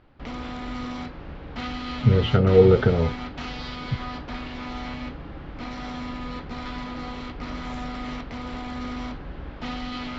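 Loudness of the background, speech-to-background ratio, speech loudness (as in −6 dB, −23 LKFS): −34.0 LKFS, 14.5 dB, −19.5 LKFS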